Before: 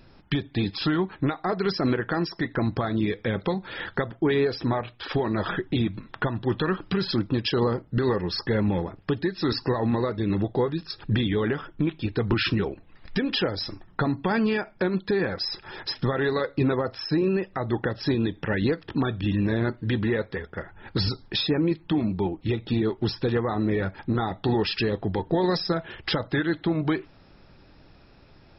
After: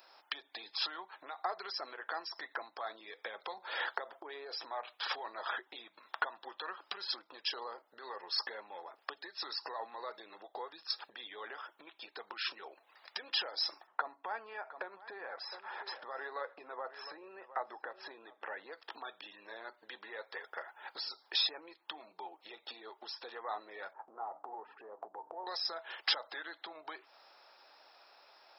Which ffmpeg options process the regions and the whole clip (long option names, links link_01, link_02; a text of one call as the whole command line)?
ffmpeg -i in.wav -filter_complex "[0:a]asettb=1/sr,asplit=3[link_01][link_02][link_03];[link_01]atrim=end=3.574[link_04];[link_02]atrim=start=3.57:end=4.55,asetpts=PTS-STARTPTS,afade=type=in:duration=0.004:curve=qsin,afade=type=out:start_time=0.976:duration=0.004:curve=qsin,equalizer=frequency=410:width_type=o:width=2.3:gain=5.5,acompressor=threshold=-23dB:ratio=2.5:attack=3.2:release=140:knee=1:detection=peak[link_05];[link_03]atrim=start=4.546[link_06];[link_04][link_05]acrossfade=duration=0.004:curve1=hsin:curve2=qsin[link_07];[link_07][link_06]acrossfade=duration=0.004:curve1=qsin:curve2=hsin,asettb=1/sr,asplit=3[link_08][link_09][link_10];[link_08]atrim=end=13.874[link_11];[link_09]atrim=start=13.87:end=18.71,asetpts=PTS-STARTPTS,afade=type=in:duration=0.004:curve=qsin,afade=type=out:start_time=4.836:duration=0.004:curve=qsin,lowpass=2000,aecho=1:1:710:0.119,atrim=end_sample=213444[link_12];[link_10]atrim=start=18.706[link_13];[link_11][link_12]acrossfade=duration=0.004:curve1=hsin:curve2=qsin[link_14];[link_14][link_13]acrossfade=duration=0.004:curve1=qsin:curve2=hsin,asettb=1/sr,asplit=3[link_15][link_16][link_17];[link_15]atrim=end=23.934[link_18];[link_16]atrim=start=23.93:end=25.47,asetpts=PTS-STARTPTS,afade=type=in:duration=0.004:curve=qsin,afade=type=out:start_time=1.536:duration=0.004:curve=qsin,lowpass=frequency=1100:width=0.5412,lowpass=frequency=1100:width=1.3066,bandreject=frequency=60:width_type=h:width=6,bandreject=frequency=120:width_type=h:width=6,bandreject=frequency=180:width_type=h:width=6,bandreject=frequency=240:width_type=h:width=6,bandreject=frequency=300:width_type=h:width=6,acompressor=threshold=-33dB:ratio=6:attack=3.2:release=140:knee=1:detection=peak[link_19];[link_17]atrim=start=25.466[link_20];[link_18][link_19]acrossfade=duration=0.004:curve1=hsin:curve2=qsin[link_21];[link_21][link_20]acrossfade=duration=0.004:curve1=qsin:curve2=hsin,equalizer=frequency=2200:width=0.36:gain=-14,acompressor=threshold=-34dB:ratio=12,highpass=frequency=770:width=0.5412,highpass=frequency=770:width=1.3066,volume=10.5dB" out.wav